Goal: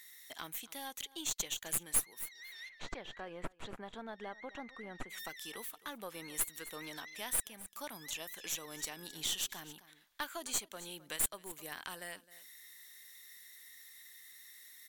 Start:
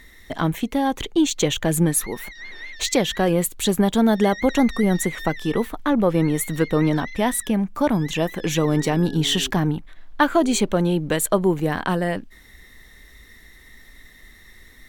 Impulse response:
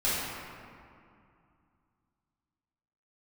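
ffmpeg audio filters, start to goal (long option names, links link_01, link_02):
-filter_complex "[0:a]aderivative,aeval=exprs='0.501*(cos(1*acos(clip(val(0)/0.501,-1,1)))-cos(1*PI/2))+0.141*(cos(2*acos(clip(val(0)/0.501,-1,1)))-cos(2*PI/2))+0.0447*(cos(6*acos(clip(val(0)/0.501,-1,1)))-cos(6*PI/2))':channel_layout=same,asplit=3[link_01][link_02][link_03];[link_01]afade=type=out:start_time=2.68:duration=0.02[link_04];[link_02]lowpass=1600,afade=type=in:start_time=2.68:duration=0.02,afade=type=out:start_time=5.09:duration=0.02[link_05];[link_03]afade=type=in:start_time=5.09:duration=0.02[link_06];[link_04][link_05][link_06]amix=inputs=3:normalize=0,aecho=1:1:262:0.0891,acompressor=threshold=-48dB:ratio=1.5"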